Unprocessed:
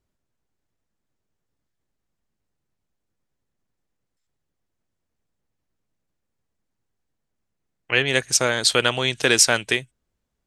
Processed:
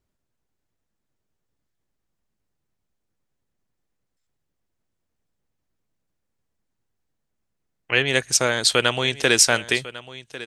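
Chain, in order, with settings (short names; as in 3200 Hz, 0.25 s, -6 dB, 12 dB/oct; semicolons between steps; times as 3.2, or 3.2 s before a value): echo 1.099 s -16.5 dB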